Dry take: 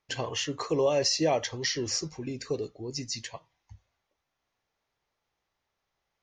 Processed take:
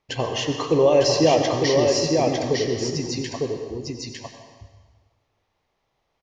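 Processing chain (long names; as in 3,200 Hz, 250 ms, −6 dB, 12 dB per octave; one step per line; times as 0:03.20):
low-pass filter 2,700 Hz 6 dB per octave
parametric band 1,500 Hz −6.5 dB 0.62 octaves
on a send: single-tap delay 904 ms −3.5 dB
on the sum: dense smooth reverb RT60 1.4 s, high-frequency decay 0.9×, pre-delay 75 ms, DRR 5.5 dB
level +8.5 dB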